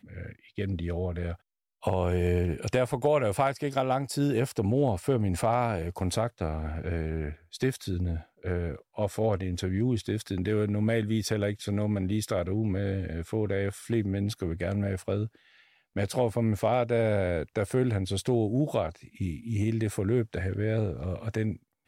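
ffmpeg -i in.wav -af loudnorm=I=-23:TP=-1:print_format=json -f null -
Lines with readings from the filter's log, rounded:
"input_i" : "-29.5",
"input_tp" : "-13.4",
"input_lra" : "3.8",
"input_thresh" : "-39.7",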